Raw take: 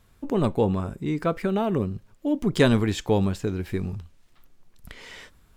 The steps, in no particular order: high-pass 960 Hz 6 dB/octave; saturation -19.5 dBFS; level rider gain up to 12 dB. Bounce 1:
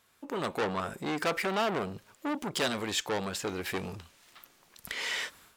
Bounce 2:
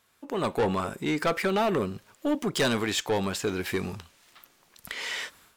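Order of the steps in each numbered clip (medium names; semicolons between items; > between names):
level rider > saturation > high-pass; high-pass > level rider > saturation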